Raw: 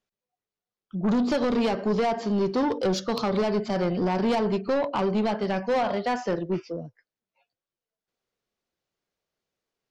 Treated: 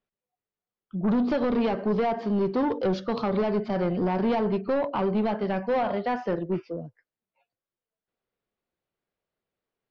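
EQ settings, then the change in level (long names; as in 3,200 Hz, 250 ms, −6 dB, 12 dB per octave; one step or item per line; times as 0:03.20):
high-frequency loss of the air 260 metres
0.0 dB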